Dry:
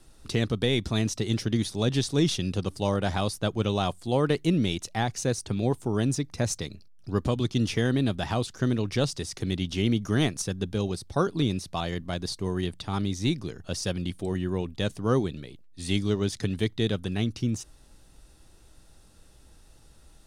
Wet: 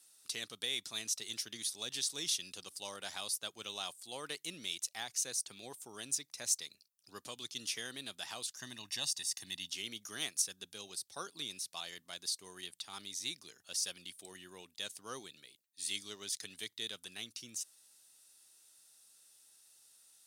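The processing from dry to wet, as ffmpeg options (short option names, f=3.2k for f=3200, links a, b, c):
-filter_complex "[0:a]asettb=1/sr,asplit=3[a][b][c];[a]atrim=end=8.574[d];[b]atrim=start=8.57:end=9.71,asetpts=PTS-STARTPTS,afade=t=in:d=0.004:c=qsin,afade=t=out:st=1.136:d=0.004:c=qsin,aecho=1:1:1.1:0.7,atrim=end_sample=50274[e];[c]atrim=start=9.706[f];[d][e]acrossfade=d=0.004:c1=hsin:c2=qsin[g];[g][f]acrossfade=d=0.004:c1=qsin:c2=hsin,highpass=81,aderivative,volume=1dB"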